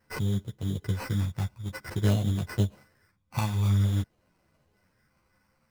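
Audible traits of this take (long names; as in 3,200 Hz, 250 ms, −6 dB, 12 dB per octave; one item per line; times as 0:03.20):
a buzz of ramps at a fixed pitch in blocks of 8 samples
phaser sweep stages 12, 0.51 Hz, lowest notch 480–2,300 Hz
aliases and images of a low sample rate 3,500 Hz, jitter 0%
a shimmering, thickened sound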